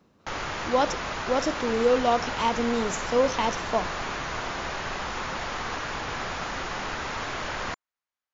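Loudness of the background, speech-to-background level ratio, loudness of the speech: −31.5 LKFS, 5.0 dB, −26.5 LKFS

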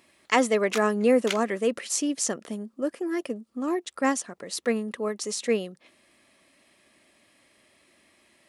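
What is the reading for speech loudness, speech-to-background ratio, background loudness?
−27.0 LKFS, 9.5 dB, −36.5 LKFS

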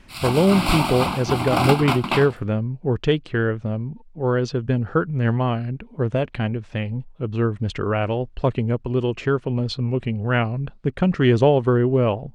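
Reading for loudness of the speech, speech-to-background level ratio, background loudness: −22.0 LKFS, 1.5 dB, −23.5 LKFS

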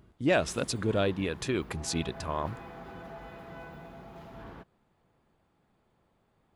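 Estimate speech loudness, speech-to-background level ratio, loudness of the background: −31.0 LKFS, 15.5 dB, −46.5 LKFS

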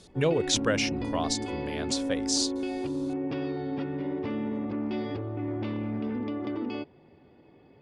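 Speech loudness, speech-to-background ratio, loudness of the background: −29.5 LKFS, 3.0 dB, −32.5 LKFS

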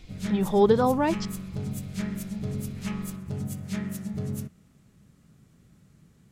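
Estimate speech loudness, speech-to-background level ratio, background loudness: −24.0 LKFS, 9.5 dB, −33.5 LKFS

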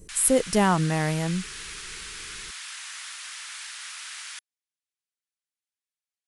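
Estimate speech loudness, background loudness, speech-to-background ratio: −23.5 LKFS, −36.5 LKFS, 13.0 dB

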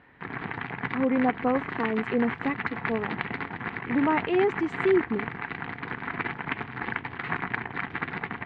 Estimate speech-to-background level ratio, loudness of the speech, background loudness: 5.5 dB, −27.5 LKFS, −33.0 LKFS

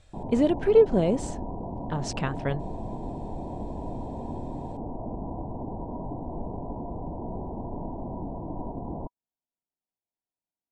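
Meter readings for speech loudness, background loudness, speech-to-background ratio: −25.0 LKFS, −36.5 LKFS, 11.5 dB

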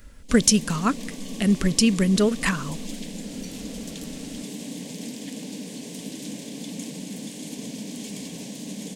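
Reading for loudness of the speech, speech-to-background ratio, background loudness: −21.5 LKFS, 14.0 dB, −35.5 LKFS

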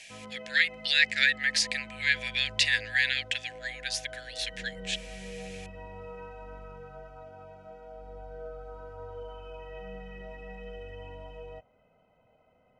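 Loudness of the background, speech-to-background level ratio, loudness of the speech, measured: −45.0 LKFS, 18.0 dB, −27.0 LKFS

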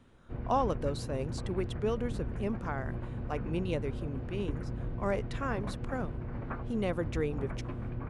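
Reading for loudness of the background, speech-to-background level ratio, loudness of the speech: −39.0 LKFS, 3.0 dB, −36.0 LKFS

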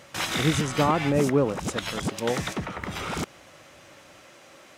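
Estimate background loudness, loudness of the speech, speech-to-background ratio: −30.5 LKFS, −26.5 LKFS, 4.0 dB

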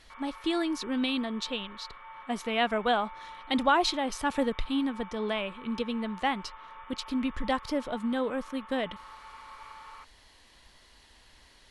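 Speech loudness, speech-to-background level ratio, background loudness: −30.5 LKFS, 16.5 dB, −47.0 LKFS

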